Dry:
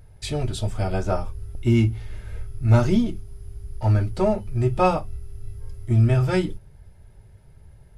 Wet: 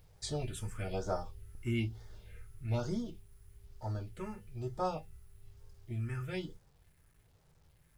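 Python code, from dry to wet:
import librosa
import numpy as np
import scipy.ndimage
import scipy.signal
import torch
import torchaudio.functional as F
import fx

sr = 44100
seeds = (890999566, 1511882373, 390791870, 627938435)

y = fx.low_shelf(x, sr, hz=420.0, db=-9.5)
y = fx.rider(y, sr, range_db=4, speed_s=2.0)
y = fx.comb_fb(y, sr, f0_hz=160.0, decay_s=0.24, harmonics='odd', damping=0.0, mix_pct=70)
y = fx.phaser_stages(y, sr, stages=4, low_hz=630.0, high_hz=2700.0, hz=1.1, feedback_pct=5)
y = fx.quant_dither(y, sr, seeds[0], bits=12, dither='none')
y = F.gain(torch.from_numpy(y), 1.0).numpy()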